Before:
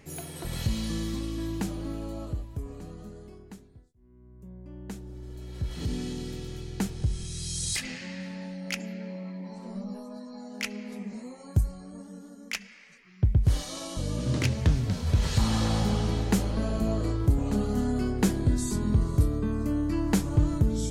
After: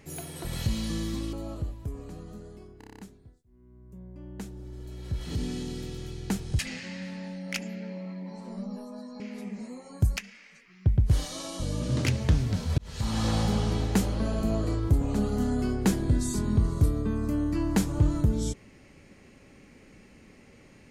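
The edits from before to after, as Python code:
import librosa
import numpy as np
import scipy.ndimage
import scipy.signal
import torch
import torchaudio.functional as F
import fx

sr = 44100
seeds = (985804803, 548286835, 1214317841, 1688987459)

y = fx.edit(x, sr, fx.cut(start_s=1.33, length_s=0.71),
    fx.stutter(start_s=3.49, slice_s=0.03, count=8),
    fx.cut(start_s=7.09, length_s=0.68),
    fx.cut(start_s=10.38, length_s=0.36),
    fx.cut(start_s=11.71, length_s=0.83),
    fx.fade_in_span(start_s=15.15, length_s=0.51), tone=tone)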